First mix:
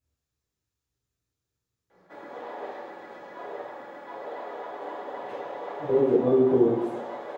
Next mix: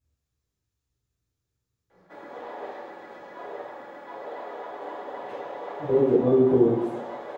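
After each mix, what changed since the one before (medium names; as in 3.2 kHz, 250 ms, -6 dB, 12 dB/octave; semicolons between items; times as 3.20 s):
speech: add bass shelf 170 Hz +7 dB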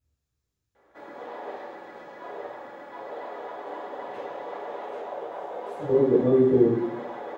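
background: entry -1.15 s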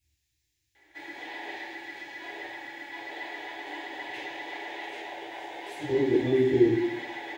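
master: add FFT filter 110 Hz 0 dB, 220 Hz -14 dB, 320 Hz +5 dB, 500 Hz -15 dB, 860 Hz 0 dB, 1.2 kHz -16 dB, 1.9 kHz +13 dB, 3.3 kHz +12 dB, 7.2 kHz +10 dB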